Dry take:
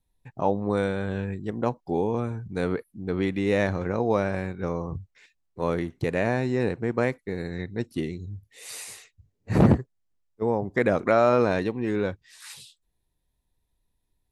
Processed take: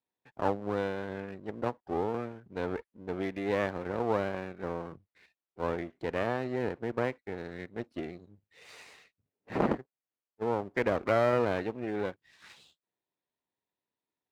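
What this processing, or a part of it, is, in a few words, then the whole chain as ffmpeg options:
crystal radio: -af "highpass=300,lowpass=2900,aeval=exprs='if(lt(val(0),0),0.251*val(0),val(0))':c=same,highpass=59,volume=0.841"

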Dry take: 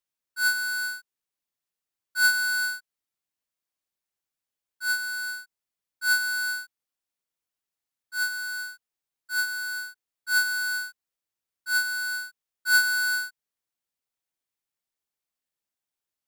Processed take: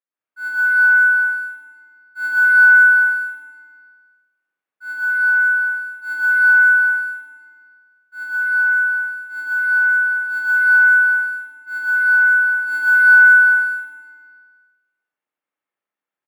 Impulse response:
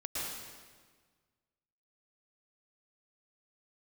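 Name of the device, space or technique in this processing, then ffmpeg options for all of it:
stadium PA: -filter_complex "[0:a]highpass=220,firequalizer=gain_entry='entry(1400,0);entry(4800,-22);entry(10000,-16)':delay=0.05:min_phase=1,equalizer=f=2400:t=o:w=1.9:g=4.5,aecho=1:1:195.3|253.6:0.562|0.891[s0];[1:a]atrim=start_sample=2205[s1];[s0][s1]afir=irnorm=-1:irlink=0"

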